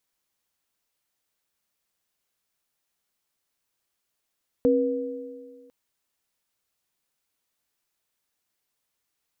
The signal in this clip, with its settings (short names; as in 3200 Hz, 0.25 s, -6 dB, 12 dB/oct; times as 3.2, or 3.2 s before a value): sine partials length 1.05 s, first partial 267 Hz, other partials 485 Hz, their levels 2.5 dB, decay 1.76 s, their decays 1.82 s, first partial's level -19.5 dB